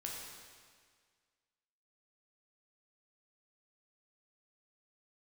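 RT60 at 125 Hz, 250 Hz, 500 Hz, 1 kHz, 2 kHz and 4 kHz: 1.8, 1.7, 1.8, 1.8, 1.8, 1.7 s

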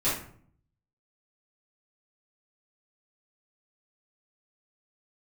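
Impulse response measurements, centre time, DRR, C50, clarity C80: 42 ms, -12.5 dB, 3.5 dB, 8.5 dB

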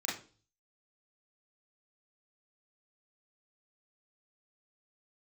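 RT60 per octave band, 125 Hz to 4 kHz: 0.70, 0.50, 0.45, 0.35, 0.35, 0.40 s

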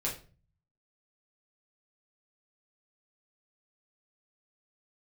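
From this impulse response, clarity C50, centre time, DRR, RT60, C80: 8.5 dB, 25 ms, -5.0 dB, 0.40 s, 14.0 dB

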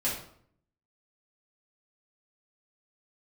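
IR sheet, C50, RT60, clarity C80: 4.5 dB, 0.60 s, 8.5 dB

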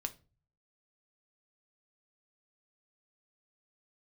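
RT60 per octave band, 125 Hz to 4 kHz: 0.75, 0.45, 0.40, 0.30, 0.25, 0.25 s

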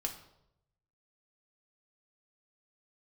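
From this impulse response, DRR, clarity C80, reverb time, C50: 2.0 dB, 13.0 dB, 0.80 s, 10.0 dB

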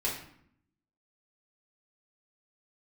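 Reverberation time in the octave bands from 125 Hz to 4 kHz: 0.95, 0.95, 0.65, 0.65, 0.60, 0.50 s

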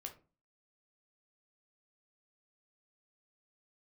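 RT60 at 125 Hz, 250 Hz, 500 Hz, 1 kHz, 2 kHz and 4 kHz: 0.50, 0.50, 0.35, 0.35, 0.25, 0.20 s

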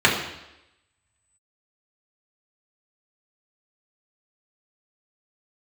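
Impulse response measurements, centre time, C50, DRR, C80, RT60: 36 ms, 5.5 dB, -4.5 dB, 8.0 dB, 0.90 s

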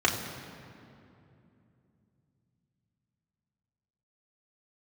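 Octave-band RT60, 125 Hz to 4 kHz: 4.7, 4.0, 3.0, 2.5, 2.2, 1.6 s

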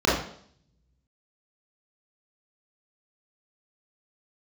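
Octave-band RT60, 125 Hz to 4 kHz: 1.4, 0.75, 0.65, 0.60, 0.55, 0.65 s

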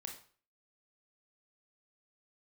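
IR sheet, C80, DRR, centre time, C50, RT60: 12.0 dB, 2.0 dB, 21 ms, 7.0 dB, 0.45 s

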